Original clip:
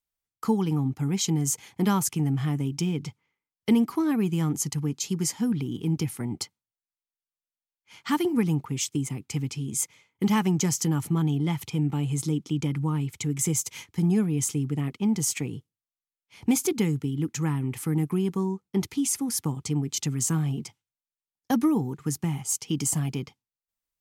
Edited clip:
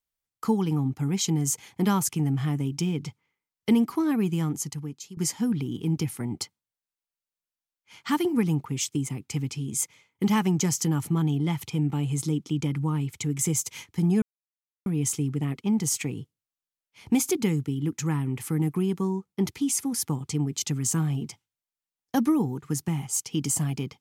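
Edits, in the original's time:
0:04.30–0:05.17: fade out, to −17 dB
0:14.22: splice in silence 0.64 s

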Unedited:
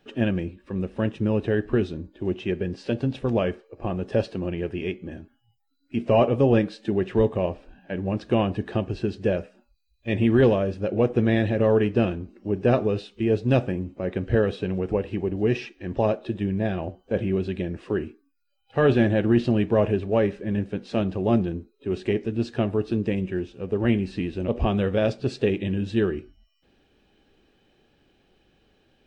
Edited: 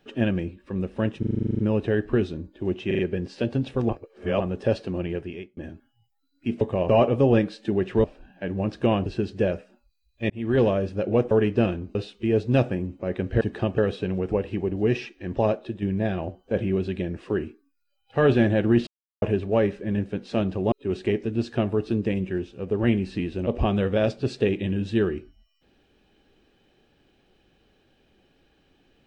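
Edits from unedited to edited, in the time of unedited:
0:01.19: stutter 0.04 s, 11 plays
0:02.47: stutter 0.04 s, 4 plays
0:03.37–0:03.88: reverse
0:04.58–0:05.05: fade out
0:07.24–0:07.52: move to 0:06.09
0:08.54–0:08.91: move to 0:14.38
0:10.15–0:10.54: fade in
0:11.16–0:11.70: remove
0:12.34–0:12.92: remove
0:16.12–0:16.42: fade out, to −6.5 dB
0:19.47–0:19.82: silence
0:21.32–0:21.73: remove

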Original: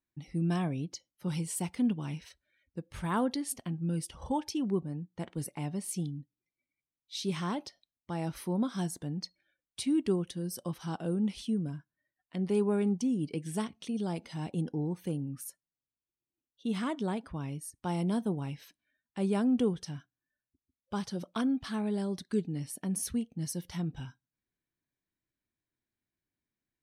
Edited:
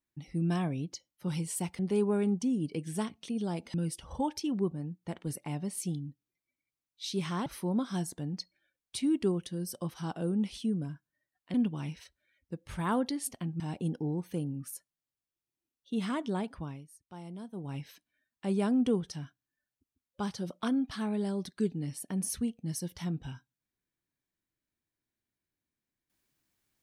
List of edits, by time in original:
0:01.79–0:03.85: swap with 0:12.38–0:14.33
0:07.57–0:08.30: remove
0:17.32–0:18.51: duck −13 dB, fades 0.25 s

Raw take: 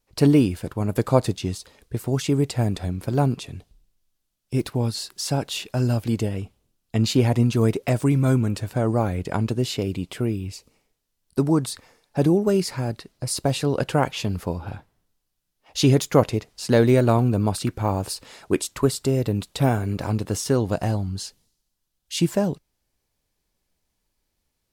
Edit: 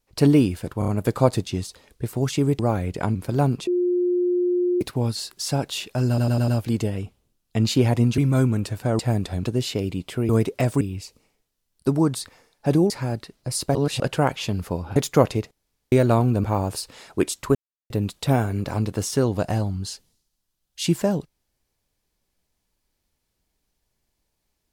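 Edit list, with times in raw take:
0:00.79: stutter 0.03 s, 4 plays
0:02.50–0:02.94: swap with 0:08.90–0:09.46
0:03.46–0:04.60: beep over 356 Hz −18 dBFS
0:05.87: stutter 0.10 s, 5 plays
0:07.57–0:08.09: move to 0:10.32
0:12.41–0:12.66: remove
0:13.51–0:13.76: reverse
0:14.72–0:15.94: remove
0:16.49–0:16.90: fill with room tone
0:17.42–0:17.77: remove
0:18.88–0:19.23: silence

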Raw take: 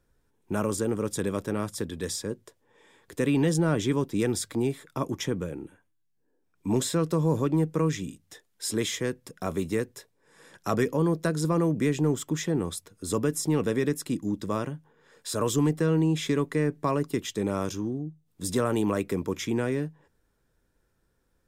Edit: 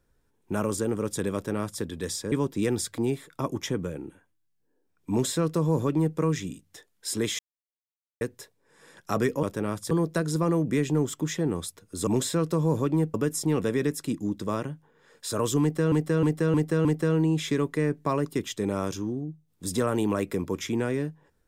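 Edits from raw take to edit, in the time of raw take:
0:01.34–0:01.82: duplicate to 0:11.00
0:02.32–0:03.89: remove
0:06.67–0:07.74: duplicate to 0:13.16
0:08.96–0:09.78: silence
0:15.63–0:15.94: repeat, 5 plays

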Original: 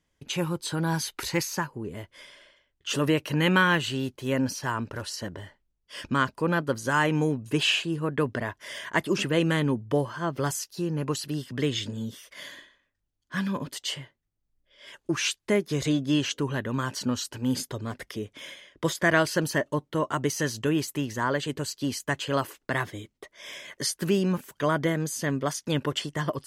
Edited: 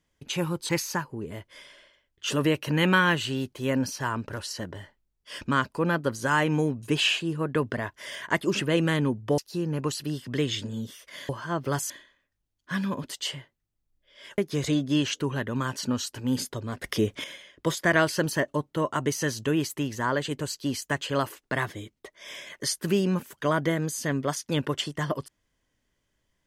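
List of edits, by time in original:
0:00.69–0:01.32: remove
0:10.01–0:10.62: move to 0:12.53
0:15.01–0:15.56: remove
0:18.02–0:18.42: clip gain +9.5 dB

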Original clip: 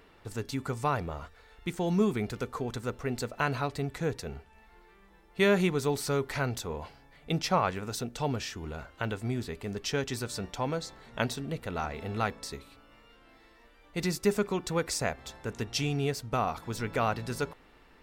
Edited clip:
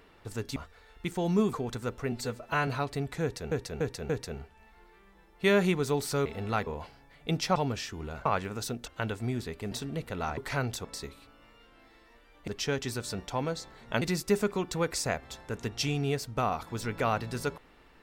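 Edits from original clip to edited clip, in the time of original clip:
0:00.56–0:01.18: remove
0:02.15–0:02.54: remove
0:03.13–0:03.50: time-stretch 1.5×
0:04.05–0:04.34: repeat, 4 plays
0:06.21–0:06.68: swap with 0:11.93–0:12.34
0:07.57–0:08.19: move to 0:08.89
0:09.73–0:11.27: move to 0:13.97

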